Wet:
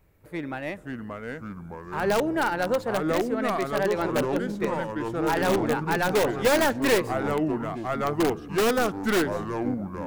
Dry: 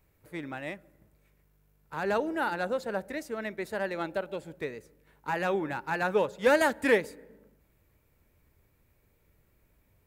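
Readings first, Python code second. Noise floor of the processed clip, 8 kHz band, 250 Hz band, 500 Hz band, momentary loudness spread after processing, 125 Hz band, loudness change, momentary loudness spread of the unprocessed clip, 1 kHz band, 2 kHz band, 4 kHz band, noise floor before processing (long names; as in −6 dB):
−42 dBFS, +12.0 dB, +10.0 dB, +6.0 dB, 13 LU, +12.0 dB, +4.5 dB, 17 LU, +6.5 dB, +4.0 dB, +9.5 dB, −69 dBFS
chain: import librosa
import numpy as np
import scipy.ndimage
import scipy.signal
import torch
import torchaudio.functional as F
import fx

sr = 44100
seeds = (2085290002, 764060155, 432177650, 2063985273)

p1 = fx.tracing_dist(x, sr, depth_ms=0.16)
p2 = fx.high_shelf(p1, sr, hz=2400.0, db=-6.0)
p3 = fx.echo_pitch(p2, sr, ms=443, semitones=-4, count=3, db_per_echo=-3.0)
p4 = (np.mod(10.0 ** (21.5 / 20.0) * p3 + 1.0, 2.0) - 1.0) / 10.0 ** (21.5 / 20.0)
p5 = p3 + (p4 * 10.0 ** (-4.0 / 20.0))
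y = p5 * 10.0 ** (2.0 / 20.0)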